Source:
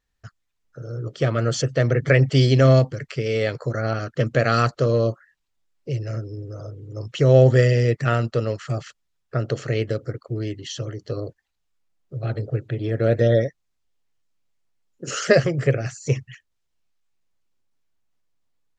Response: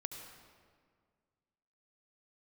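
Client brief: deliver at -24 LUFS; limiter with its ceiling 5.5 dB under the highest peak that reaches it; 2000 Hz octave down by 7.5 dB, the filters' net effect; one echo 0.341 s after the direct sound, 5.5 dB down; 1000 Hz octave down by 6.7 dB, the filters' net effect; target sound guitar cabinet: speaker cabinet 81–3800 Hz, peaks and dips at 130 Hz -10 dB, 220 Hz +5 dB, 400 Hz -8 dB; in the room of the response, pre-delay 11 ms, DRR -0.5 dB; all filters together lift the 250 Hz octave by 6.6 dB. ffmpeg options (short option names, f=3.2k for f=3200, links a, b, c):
-filter_complex "[0:a]equalizer=f=250:t=o:g=8,equalizer=f=1k:t=o:g=-8.5,equalizer=f=2k:t=o:g=-6.5,alimiter=limit=-8dB:level=0:latency=1,aecho=1:1:341:0.531,asplit=2[a][b];[1:a]atrim=start_sample=2205,adelay=11[c];[b][c]afir=irnorm=-1:irlink=0,volume=2dB[d];[a][d]amix=inputs=2:normalize=0,highpass=81,equalizer=f=130:t=q:w=4:g=-10,equalizer=f=220:t=q:w=4:g=5,equalizer=f=400:t=q:w=4:g=-8,lowpass=f=3.8k:w=0.5412,lowpass=f=3.8k:w=1.3066,volume=-2.5dB"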